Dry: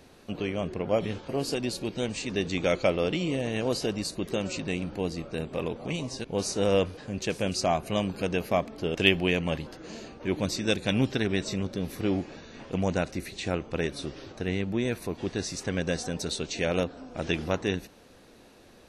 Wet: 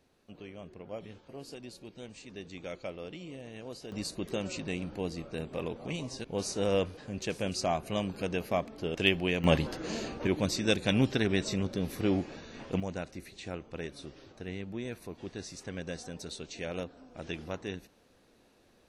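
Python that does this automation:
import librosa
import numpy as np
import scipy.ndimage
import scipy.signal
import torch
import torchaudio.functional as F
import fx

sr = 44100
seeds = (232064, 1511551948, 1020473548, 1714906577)

y = fx.gain(x, sr, db=fx.steps((0.0, -15.5), (3.92, -4.5), (9.44, 5.5), (10.27, -1.0), (12.8, -10.0)))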